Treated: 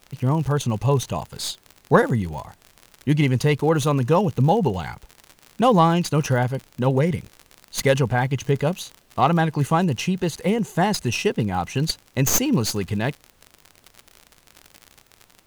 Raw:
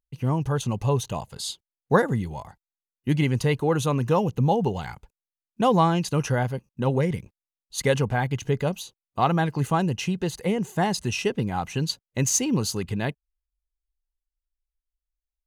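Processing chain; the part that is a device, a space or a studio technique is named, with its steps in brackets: record under a worn stylus (tracing distortion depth 0.076 ms; crackle 63 per s -32 dBFS; pink noise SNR 37 dB); trim +3.5 dB

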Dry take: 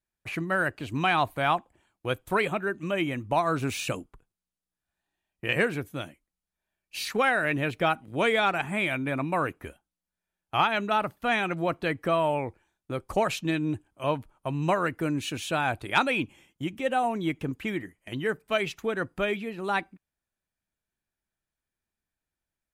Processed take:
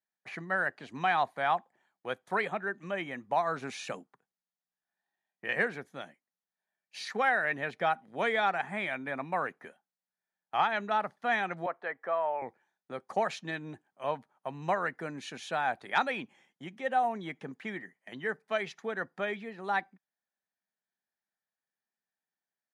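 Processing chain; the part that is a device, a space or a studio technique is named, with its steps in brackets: television speaker (cabinet simulation 180–8800 Hz, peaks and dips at 310 Hz -10 dB, 780 Hz +6 dB, 1.8 kHz +7 dB, 2.7 kHz -7 dB, 8 kHz -9 dB); 11.66–12.42 s: three-band isolator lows -18 dB, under 400 Hz, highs -17 dB, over 2.2 kHz; trim -6 dB

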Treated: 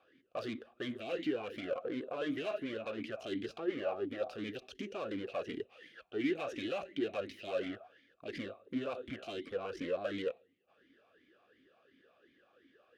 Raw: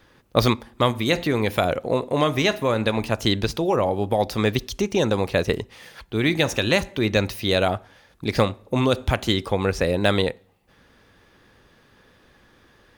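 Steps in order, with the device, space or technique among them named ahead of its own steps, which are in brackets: talk box (valve stage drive 29 dB, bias 0.8; talking filter a-i 2.8 Hz); trim +5.5 dB

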